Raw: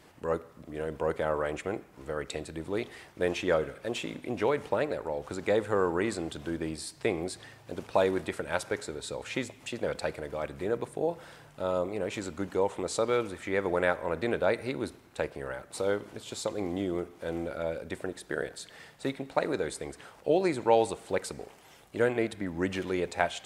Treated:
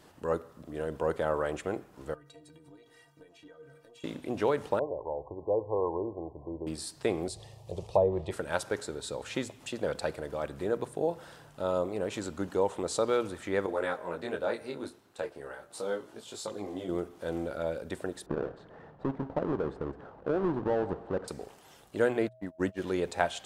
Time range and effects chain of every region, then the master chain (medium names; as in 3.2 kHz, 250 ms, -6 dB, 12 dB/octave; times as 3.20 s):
2.14–4.04 s: compression 12:1, threshold -38 dBFS + inharmonic resonator 140 Hz, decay 0.25 s, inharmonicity 0.03
4.79–6.67 s: brick-wall FIR low-pass 1.1 kHz + peaking EQ 210 Hz -14 dB 0.91 oct
7.28–8.31 s: low-pass that closes with the level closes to 880 Hz, closed at -20.5 dBFS + bass shelf 270 Hz +10.5 dB + static phaser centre 620 Hz, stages 4
13.66–16.89 s: bass shelf 120 Hz -11 dB + detune thickener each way 12 cents
18.26–21.28 s: square wave that keeps the level + low-pass 1.1 kHz + compression 2.5:1, threshold -28 dBFS
22.26–22.82 s: gate -33 dBFS, range -40 dB + whistle 640 Hz -55 dBFS
whole clip: peaking EQ 2.2 kHz -6.5 dB 0.43 oct; hum notches 60/120 Hz